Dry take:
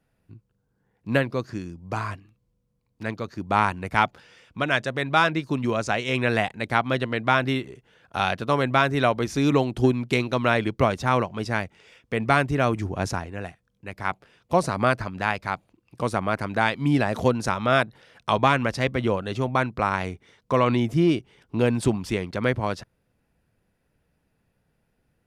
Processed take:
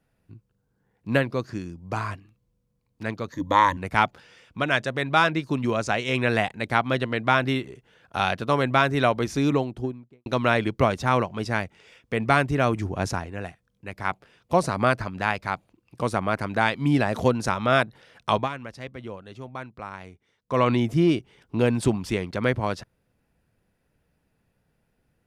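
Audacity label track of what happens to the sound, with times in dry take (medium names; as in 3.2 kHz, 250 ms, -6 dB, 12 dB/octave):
3.320000	3.770000	rippled EQ curve crests per octave 1.1, crest to trough 17 dB
9.230000	10.260000	studio fade out
18.350000	20.600000	dip -13.5 dB, fades 0.14 s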